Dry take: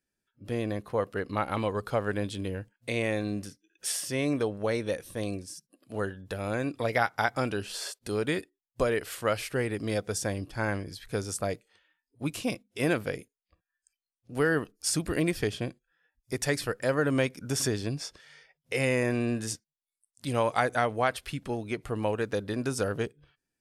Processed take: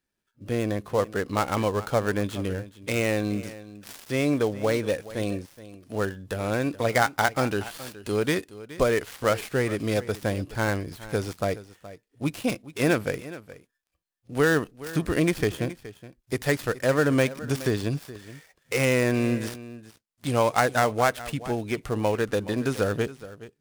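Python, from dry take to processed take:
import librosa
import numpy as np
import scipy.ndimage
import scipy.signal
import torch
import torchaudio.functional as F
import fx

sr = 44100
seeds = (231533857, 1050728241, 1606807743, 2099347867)

p1 = fx.dead_time(x, sr, dead_ms=0.1)
p2 = p1 + fx.echo_single(p1, sr, ms=421, db=-16.5, dry=0)
y = p2 * 10.0 ** (4.5 / 20.0)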